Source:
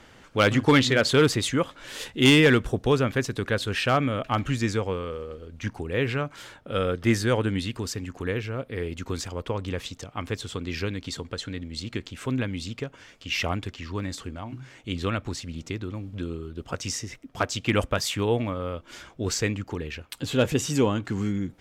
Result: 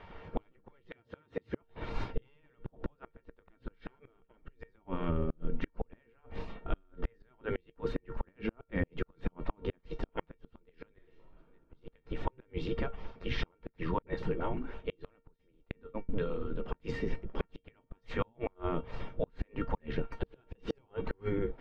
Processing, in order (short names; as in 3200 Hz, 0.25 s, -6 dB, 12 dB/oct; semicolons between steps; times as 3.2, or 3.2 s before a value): 0.85–1.62 HPF 77 Hz 24 dB/oct; spectral gate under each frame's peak -10 dB weak; 15.36–16.09 gate -41 dBFS, range -32 dB; tilt -4 dB/oct; compressor 8:1, threshold -32 dBFS, peak gain reduction 13.5 dB; 10.93–11.38 reverb throw, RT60 1.3 s, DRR -8.5 dB; resonator 460 Hz, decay 0.17 s, harmonics all, mix 80%; 14.02–14.74 dispersion highs, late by 50 ms, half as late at 350 Hz; flipped gate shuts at -37 dBFS, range -37 dB; air absorption 320 m; gain +18 dB